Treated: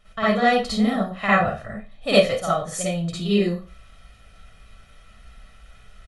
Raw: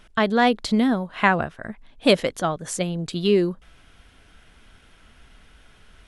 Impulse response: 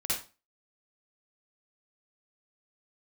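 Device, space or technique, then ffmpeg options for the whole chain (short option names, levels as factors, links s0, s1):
microphone above a desk: -filter_complex "[0:a]aecho=1:1:1.6:0.68[s0];[1:a]atrim=start_sample=2205[s1];[s0][s1]afir=irnorm=-1:irlink=0,volume=0.473"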